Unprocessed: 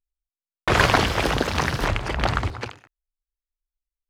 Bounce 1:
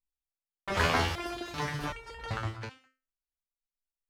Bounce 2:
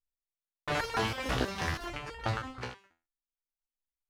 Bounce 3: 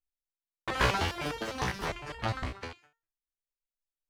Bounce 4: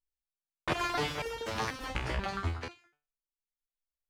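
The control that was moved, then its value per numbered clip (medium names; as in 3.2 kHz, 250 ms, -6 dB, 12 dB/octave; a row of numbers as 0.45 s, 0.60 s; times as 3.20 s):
resonator arpeggio, rate: 2.6 Hz, 6.2 Hz, 9.9 Hz, 4.1 Hz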